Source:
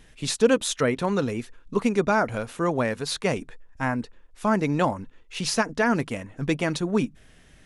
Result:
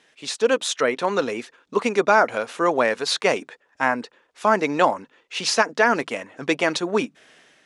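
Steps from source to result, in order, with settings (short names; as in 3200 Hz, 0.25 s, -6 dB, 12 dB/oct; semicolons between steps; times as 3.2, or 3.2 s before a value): AGC gain up to 8 dB; BPF 410–7200 Hz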